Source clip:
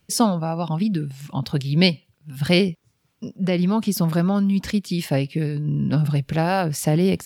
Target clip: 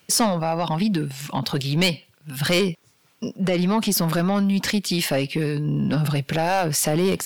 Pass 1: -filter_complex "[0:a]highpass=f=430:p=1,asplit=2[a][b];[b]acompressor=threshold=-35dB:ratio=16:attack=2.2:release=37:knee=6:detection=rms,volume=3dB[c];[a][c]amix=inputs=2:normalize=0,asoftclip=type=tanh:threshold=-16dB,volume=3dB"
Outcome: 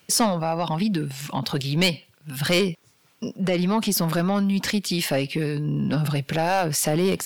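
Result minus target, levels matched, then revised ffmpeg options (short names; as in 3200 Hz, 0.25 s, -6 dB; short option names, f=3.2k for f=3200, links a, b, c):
compressor: peak gain reduction +6 dB
-filter_complex "[0:a]highpass=f=430:p=1,asplit=2[a][b];[b]acompressor=threshold=-28.5dB:ratio=16:attack=2.2:release=37:knee=6:detection=rms,volume=3dB[c];[a][c]amix=inputs=2:normalize=0,asoftclip=type=tanh:threshold=-16dB,volume=3dB"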